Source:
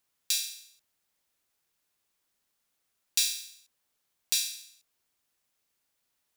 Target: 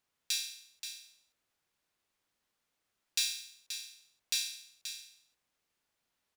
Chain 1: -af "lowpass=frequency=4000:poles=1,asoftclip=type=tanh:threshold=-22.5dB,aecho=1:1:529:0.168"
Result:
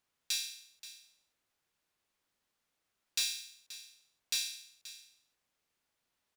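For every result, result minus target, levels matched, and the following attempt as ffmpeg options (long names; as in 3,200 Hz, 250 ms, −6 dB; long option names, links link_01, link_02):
soft clipping: distortion +8 dB; echo-to-direct −6 dB
-af "lowpass=frequency=4000:poles=1,asoftclip=type=tanh:threshold=-16dB,aecho=1:1:529:0.168"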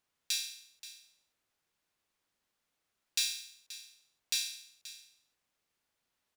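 echo-to-direct −6 dB
-af "lowpass=frequency=4000:poles=1,asoftclip=type=tanh:threshold=-16dB,aecho=1:1:529:0.335"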